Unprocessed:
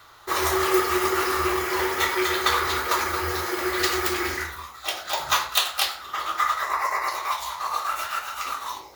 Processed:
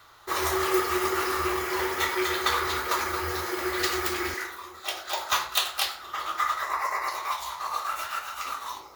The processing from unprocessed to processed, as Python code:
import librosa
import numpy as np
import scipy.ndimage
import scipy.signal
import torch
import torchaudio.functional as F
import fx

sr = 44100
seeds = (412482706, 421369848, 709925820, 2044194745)

p1 = fx.highpass(x, sr, hz=300.0, slope=24, at=(4.34, 5.32))
p2 = p1 + fx.echo_bbd(p1, sr, ms=458, stages=4096, feedback_pct=67, wet_db=-21.0, dry=0)
y = p2 * librosa.db_to_amplitude(-3.5)